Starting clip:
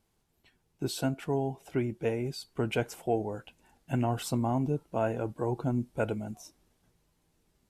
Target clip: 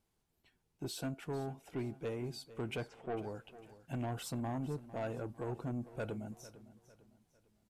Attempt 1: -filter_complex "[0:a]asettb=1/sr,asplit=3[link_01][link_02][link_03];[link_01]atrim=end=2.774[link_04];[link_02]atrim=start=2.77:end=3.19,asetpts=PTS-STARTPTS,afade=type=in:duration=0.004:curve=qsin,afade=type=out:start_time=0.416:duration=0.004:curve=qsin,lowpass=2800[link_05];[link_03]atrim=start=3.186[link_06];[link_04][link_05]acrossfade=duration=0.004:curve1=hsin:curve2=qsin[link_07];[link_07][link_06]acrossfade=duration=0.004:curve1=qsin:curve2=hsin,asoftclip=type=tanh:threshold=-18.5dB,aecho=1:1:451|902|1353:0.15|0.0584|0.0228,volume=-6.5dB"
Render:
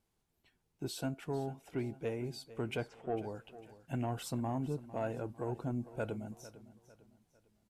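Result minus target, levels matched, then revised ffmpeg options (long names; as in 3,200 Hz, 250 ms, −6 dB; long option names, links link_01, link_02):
soft clipping: distortion −10 dB
-filter_complex "[0:a]asettb=1/sr,asplit=3[link_01][link_02][link_03];[link_01]atrim=end=2.774[link_04];[link_02]atrim=start=2.77:end=3.19,asetpts=PTS-STARTPTS,afade=type=in:duration=0.004:curve=qsin,afade=type=out:start_time=0.416:duration=0.004:curve=qsin,lowpass=2800[link_05];[link_03]atrim=start=3.186[link_06];[link_04][link_05]acrossfade=duration=0.004:curve1=hsin:curve2=qsin[link_07];[link_07][link_06]acrossfade=duration=0.004:curve1=qsin:curve2=hsin,asoftclip=type=tanh:threshold=-26dB,aecho=1:1:451|902|1353:0.15|0.0584|0.0228,volume=-6.5dB"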